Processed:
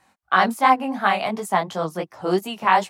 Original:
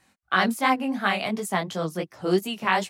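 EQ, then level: peaking EQ 880 Hz +9.5 dB 1.3 oct; -1.0 dB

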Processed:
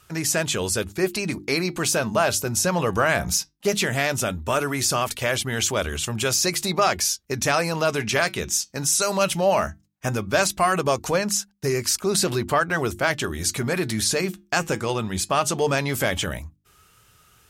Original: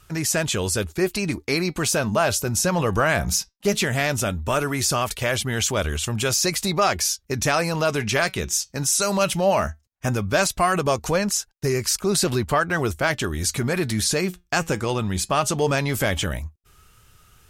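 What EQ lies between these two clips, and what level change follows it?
high-pass 110 Hz 6 dB/octave; hum notches 50/100/150/200/250/300/350 Hz; 0.0 dB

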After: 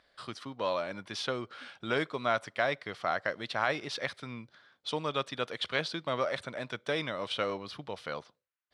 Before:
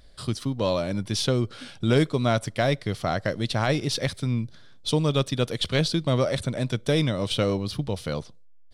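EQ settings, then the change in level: band-pass filter 1.4 kHz, Q 0.97; 0.0 dB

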